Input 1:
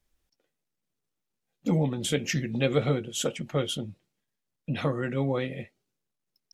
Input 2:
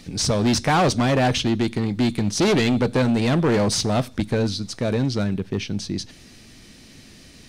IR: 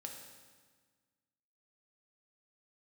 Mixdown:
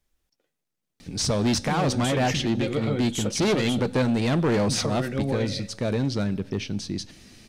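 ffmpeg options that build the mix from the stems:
-filter_complex "[0:a]asoftclip=type=tanh:threshold=0.211,volume=1.12[s0];[1:a]adelay=1000,volume=0.631,asplit=2[s1][s2];[s2]volume=0.2[s3];[2:a]atrim=start_sample=2205[s4];[s3][s4]afir=irnorm=-1:irlink=0[s5];[s0][s1][s5]amix=inputs=3:normalize=0,alimiter=limit=0.15:level=0:latency=1:release=54"

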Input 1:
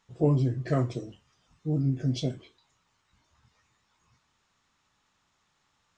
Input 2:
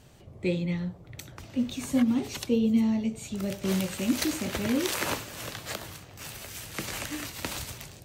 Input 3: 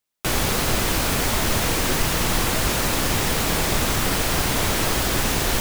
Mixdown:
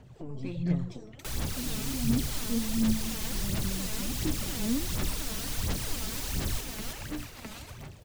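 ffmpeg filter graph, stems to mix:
-filter_complex "[0:a]alimiter=level_in=1.12:limit=0.0631:level=0:latency=1,volume=0.891,aeval=exprs='(tanh(20*val(0)+0.75)-tanh(0.75))/20':c=same,volume=0.794,asplit=2[s0][s1];[s1]volume=0.0794[s2];[1:a]asoftclip=type=tanh:threshold=0.0794,highshelf=f=3400:g=-11.5,volume=0.631[s3];[2:a]adelay=1000,volume=0.178,asplit=2[s4][s5];[s5]volume=0.708[s6];[s2][s6]amix=inputs=2:normalize=0,aecho=0:1:322|644|966|1288|1610|1932:1|0.46|0.212|0.0973|0.0448|0.0206[s7];[s0][s3][s4][s7]amix=inputs=4:normalize=0,acrossover=split=260|3000[s8][s9][s10];[s9]acompressor=threshold=0.00501:ratio=4[s11];[s8][s11][s10]amix=inputs=3:normalize=0,aphaser=in_gain=1:out_gain=1:delay=4.7:decay=0.59:speed=1.4:type=sinusoidal"

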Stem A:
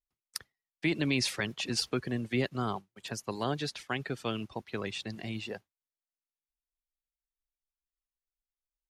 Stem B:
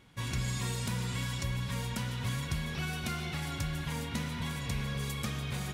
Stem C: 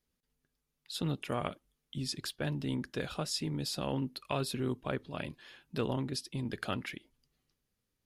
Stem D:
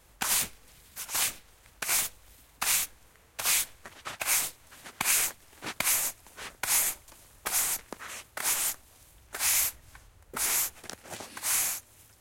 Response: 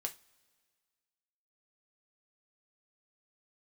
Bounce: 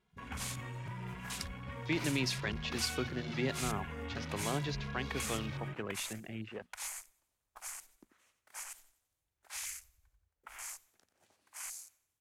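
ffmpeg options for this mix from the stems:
-filter_complex "[0:a]adelay=1050,volume=0.596[s0];[1:a]alimiter=level_in=2.99:limit=0.0631:level=0:latency=1:release=18,volume=0.335,equalizer=f=870:w=0.47:g=2.5,asplit=2[s1][s2];[s2]adelay=2.5,afreqshift=0.83[s3];[s1][s3]amix=inputs=2:normalize=1,volume=0.944,asplit=2[s4][s5];[s5]volume=0.447[s6];[2:a]aderivative,volume=0.133[s7];[3:a]adelay=100,volume=0.211,asplit=2[s8][s9];[s9]volume=0.316[s10];[4:a]atrim=start_sample=2205[s11];[s6][s11]afir=irnorm=-1:irlink=0[s12];[s10]aecho=0:1:90|180|270|360|450|540:1|0.4|0.16|0.064|0.0256|0.0102[s13];[s0][s4][s7][s8][s12][s13]amix=inputs=6:normalize=0,equalizer=f=11000:t=o:w=0.74:g=-2.5,bandreject=f=60:t=h:w=6,bandreject=f=120:t=h:w=6,bandreject=f=180:t=h:w=6,bandreject=f=240:t=h:w=6,afwtdn=0.00398"

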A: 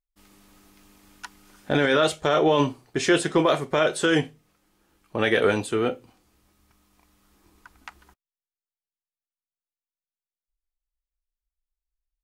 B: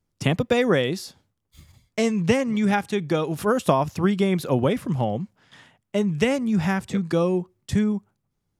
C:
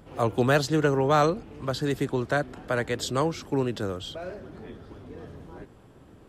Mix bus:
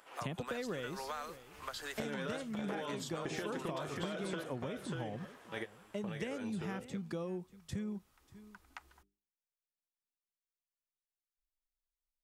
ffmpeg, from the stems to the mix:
-filter_complex "[0:a]acompressor=threshold=0.0891:ratio=6,bandreject=f=50:t=h:w=6,bandreject=f=100:t=h:w=6,bandreject=f=150:t=h:w=6,bandreject=f=200:t=h:w=6,bandreject=f=250:t=h:w=6,bandreject=f=300:t=h:w=6,bandreject=f=350:t=h:w=6,bandreject=f=400:t=h:w=6,acrossover=split=2400|6400[s0][s1][s2];[s0]acompressor=threshold=0.0251:ratio=4[s3];[s1]acompressor=threshold=0.00398:ratio=4[s4];[s2]acompressor=threshold=0.002:ratio=4[s5];[s3][s4][s5]amix=inputs=3:normalize=0,adelay=300,volume=0.944,asplit=2[s6][s7];[s7]volume=0.422[s8];[1:a]volume=0.2,asplit=2[s9][s10];[s10]volume=0.0891[s11];[2:a]highpass=1100,equalizer=f=4200:w=1.5:g=-3.5,acompressor=threshold=0.00794:ratio=5,volume=1.26,asplit=2[s12][s13];[s13]apad=whole_len=552985[s14];[s6][s14]sidechaingate=range=0.0316:threshold=0.00282:ratio=16:detection=peak[s15];[s8][s11]amix=inputs=2:normalize=0,aecho=0:1:590:1[s16];[s15][s9][s12][s16]amix=inputs=4:normalize=0,acompressor=threshold=0.0158:ratio=6"

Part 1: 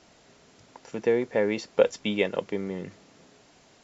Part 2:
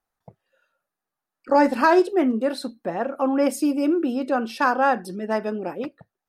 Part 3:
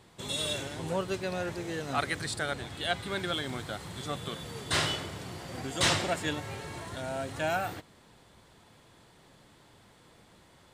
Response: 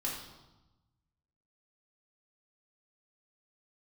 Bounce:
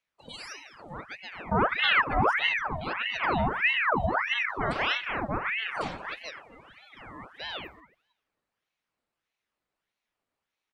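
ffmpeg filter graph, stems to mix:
-filter_complex "[0:a]acompressor=threshold=0.0316:ratio=6,bandpass=f=440:t=q:w=1.2:csg=0,adelay=1950,volume=1.12[s0];[1:a]aemphasis=mode=reproduction:type=riaa,volume=0.398,asplit=2[s1][s2];[s2]volume=0.531[s3];[2:a]alimiter=limit=0.1:level=0:latency=1:release=401,equalizer=f=1600:w=1.6:g=6,volume=0.501,asplit=2[s4][s5];[s5]volume=0.168[s6];[s3][s6]amix=inputs=2:normalize=0,aecho=0:1:275|550|825|1100|1375:1|0.36|0.13|0.0467|0.0168[s7];[s0][s1][s4][s7]amix=inputs=4:normalize=0,afftdn=nr=21:nf=-38,aeval=exprs='val(0)*sin(2*PI*1400*n/s+1400*0.75/1.6*sin(2*PI*1.6*n/s))':c=same"

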